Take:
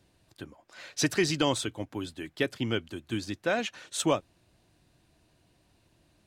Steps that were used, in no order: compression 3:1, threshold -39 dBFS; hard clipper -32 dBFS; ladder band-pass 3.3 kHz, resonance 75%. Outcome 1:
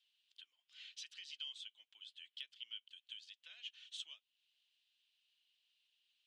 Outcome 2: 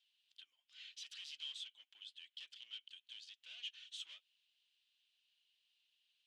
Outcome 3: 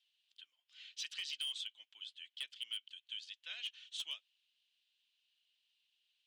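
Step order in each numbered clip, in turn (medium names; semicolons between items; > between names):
compression > ladder band-pass > hard clipper; hard clipper > compression > ladder band-pass; ladder band-pass > hard clipper > compression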